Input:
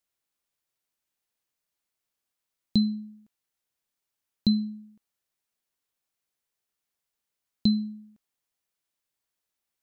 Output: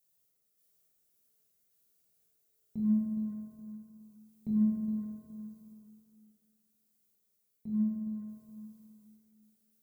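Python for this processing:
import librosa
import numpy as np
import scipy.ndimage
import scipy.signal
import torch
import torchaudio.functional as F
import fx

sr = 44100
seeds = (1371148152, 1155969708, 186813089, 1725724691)

y = fx.wiener(x, sr, points=41)
y = scipy.signal.sosfilt(scipy.signal.cheby1(4, 1.0, 2100.0, 'lowpass', fs=sr, output='sos'), y)
y = fx.over_compress(y, sr, threshold_db=-31.0, ratio=-1.0)
y = fx.dmg_noise_colour(y, sr, seeds[0], colour='violet', level_db=-74.0)
y = fx.tremolo_random(y, sr, seeds[1], hz=3.5, depth_pct=55)
y = fx.echo_feedback(y, sr, ms=417, feedback_pct=34, wet_db=-9)
y = fx.rev_fdn(y, sr, rt60_s=2.5, lf_ratio=1.1, hf_ratio=0.25, size_ms=14.0, drr_db=-6.5)
y = y * 10.0 ** (-1.5 / 20.0)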